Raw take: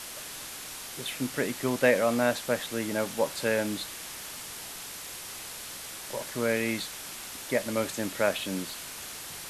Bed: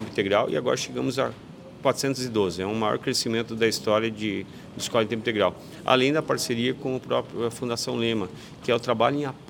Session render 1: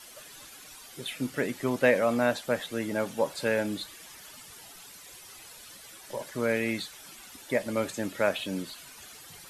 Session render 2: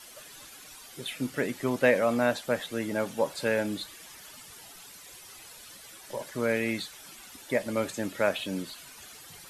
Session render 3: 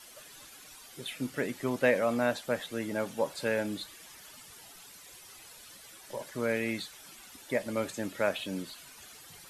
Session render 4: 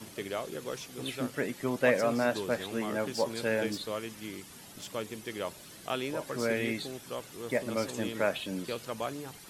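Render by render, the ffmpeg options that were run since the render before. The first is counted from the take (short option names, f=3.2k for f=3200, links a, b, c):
-af "afftdn=nr=12:nf=-41"
-af anull
-af "volume=-3dB"
-filter_complex "[1:a]volume=-14dB[a];[0:a][a]amix=inputs=2:normalize=0"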